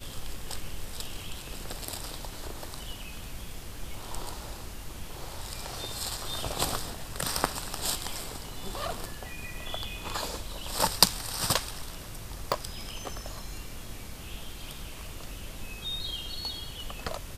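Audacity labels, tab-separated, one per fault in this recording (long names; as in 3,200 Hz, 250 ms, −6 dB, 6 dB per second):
12.520000	12.520000	click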